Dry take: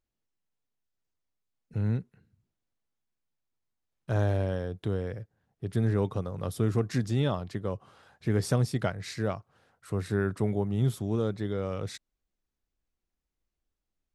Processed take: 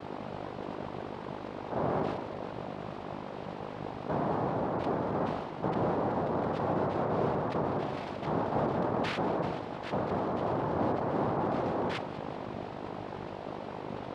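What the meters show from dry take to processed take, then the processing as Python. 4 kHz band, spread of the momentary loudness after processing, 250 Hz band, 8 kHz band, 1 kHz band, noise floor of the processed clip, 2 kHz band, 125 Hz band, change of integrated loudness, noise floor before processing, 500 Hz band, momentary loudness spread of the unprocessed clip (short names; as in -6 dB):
-1.5 dB, 10 LU, -0.5 dB, under -10 dB, +11.0 dB, -41 dBFS, +1.0 dB, -8.0 dB, -3.0 dB, under -85 dBFS, +2.0 dB, 11 LU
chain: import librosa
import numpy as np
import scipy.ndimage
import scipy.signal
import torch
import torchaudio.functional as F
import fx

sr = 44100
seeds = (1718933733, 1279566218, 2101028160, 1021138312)

p1 = fx.env_lowpass_down(x, sr, base_hz=380.0, full_db=-24.5)
p2 = fx.low_shelf(p1, sr, hz=410.0, db=11.5)
p3 = p2 + 0.85 * np.pad(p2, (int(1.4 * sr / 1000.0), 0))[:len(p2)]
p4 = fx.rider(p3, sr, range_db=10, speed_s=0.5)
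p5 = p3 + F.gain(torch.from_numpy(p4), 0.5).numpy()
p6 = fx.add_hum(p5, sr, base_hz=50, snr_db=24)
p7 = fx.quant_dither(p6, sr, seeds[0], bits=8, dither='triangular')
p8 = np.clip(p7, -10.0 ** (-32.0 / 20.0), 10.0 ** (-32.0 / 20.0))
p9 = fx.noise_vocoder(p8, sr, seeds[1], bands=2)
p10 = fx.air_absorb(p9, sr, metres=400.0)
p11 = fx.echo_split(p10, sr, split_hz=310.0, low_ms=698, high_ms=197, feedback_pct=52, wet_db=-15.0)
p12 = fx.sustainer(p11, sr, db_per_s=41.0)
y = F.gain(torch.from_numpy(p12), 4.5).numpy()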